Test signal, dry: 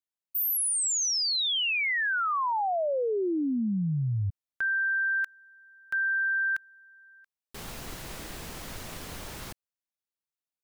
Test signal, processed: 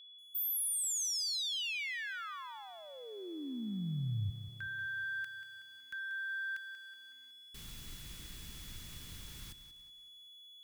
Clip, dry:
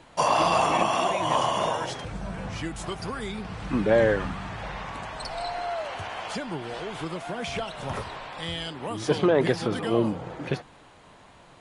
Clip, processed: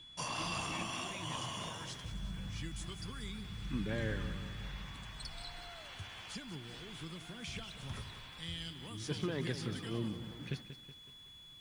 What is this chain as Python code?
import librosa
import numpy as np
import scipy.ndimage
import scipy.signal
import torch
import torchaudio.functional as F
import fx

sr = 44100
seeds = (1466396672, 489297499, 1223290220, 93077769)

y = fx.tone_stack(x, sr, knobs='6-0-2')
y = y + 10.0 ** (-59.0 / 20.0) * np.sin(2.0 * np.pi * 3400.0 * np.arange(len(y)) / sr)
y = fx.echo_crushed(y, sr, ms=186, feedback_pct=55, bits=11, wet_db=-11.0)
y = F.gain(torch.from_numpy(y), 6.5).numpy()